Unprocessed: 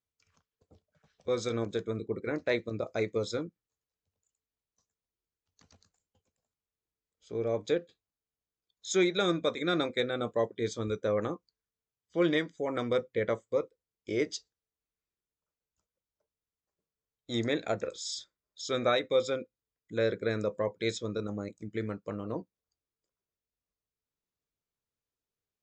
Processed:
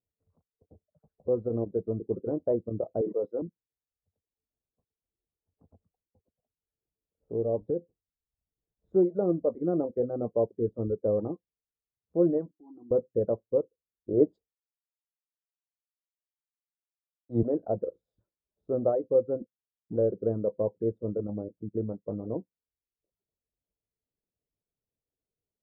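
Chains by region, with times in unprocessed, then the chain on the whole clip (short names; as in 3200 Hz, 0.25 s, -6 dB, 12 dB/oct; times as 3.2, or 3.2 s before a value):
3.01–3.42 HPF 390 Hz + bell 5100 Hz +8.5 dB 0.2 oct + sustainer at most 46 dB/s
7.61–8.96 low shelf 140 Hz +9 dB + compressor 2.5:1, threshold -30 dBFS
12.51–12.91 vowel filter u + compressor 4:1, threshold -49 dBFS
14.13–17.43 high shelf 2300 Hz +10.5 dB + three-band expander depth 100%
19.4–19.96 sample leveller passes 2 + band-pass 170 Hz, Q 0.83
whole clip: reverb removal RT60 0.6 s; inverse Chebyshev low-pass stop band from 2400 Hz, stop band 60 dB; gain +4 dB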